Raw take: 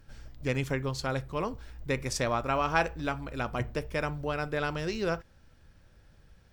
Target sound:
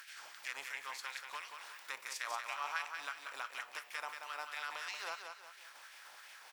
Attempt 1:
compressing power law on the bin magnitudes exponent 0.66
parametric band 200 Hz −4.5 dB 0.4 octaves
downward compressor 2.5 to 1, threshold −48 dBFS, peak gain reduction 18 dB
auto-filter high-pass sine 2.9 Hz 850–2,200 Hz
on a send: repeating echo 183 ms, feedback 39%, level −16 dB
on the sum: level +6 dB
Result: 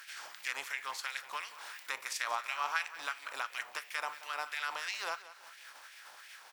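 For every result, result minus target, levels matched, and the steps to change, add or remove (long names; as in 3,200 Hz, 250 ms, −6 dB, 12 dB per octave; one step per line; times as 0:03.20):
echo-to-direct −10 dB; downward compressor: peak gain reduction −5.5 dB
change: repeating echo 183 ms, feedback 39%, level −6 dB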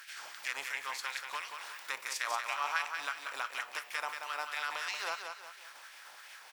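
downward compressor: peak gain reduction −5.5 dB
change: downward compressor 2.5 to 1, threshold −57.5 dBFS, peak gain reduction 24 dB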